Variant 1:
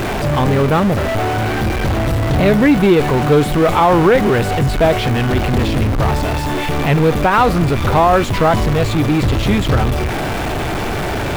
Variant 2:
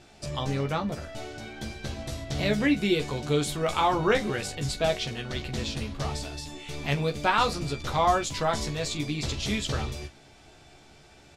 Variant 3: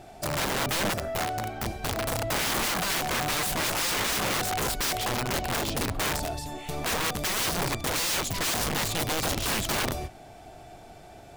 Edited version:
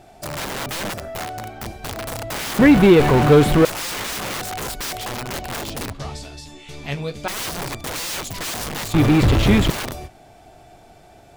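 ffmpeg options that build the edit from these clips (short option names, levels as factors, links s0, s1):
-filter_complex "[0:a]asplit=2[s0][s1];[2:a]asplit=4[s2][s3][s4][s5];[s2]atrim=end=2.592[s6];[s0]atrim=start=2.588:end=3.652[s7];[s3]atrim=start=3.648:end=5.932[s8];[1:a]atrim=start=5.928:end=7.282[s9];[s4]atrim=start=7.278:end=8.942[s10];[s1]atrim=start=8.938:end=9.702[s11];[s5]atrim=start=9.698[s12];[s6][s7]acrossfade=d=0.004:c1=hsin:c2=hsin[s13];[s13][s8]acrossfade=d=0.004:c1=hsin:c2=hsin[s14];[s14][s9]acrossfade=d=0.004:c1=hsin:c2=hsin[s15];[s15][s10]acrossfade=d=0.004:c1=hsin:c2=hsin[s16];[s16][s11]acrossfade=d=0.004:c1=hsin:c2=hsin[s17];[s17][s12]acrossfade=d=0.004:c1=hsin:c2=hsin"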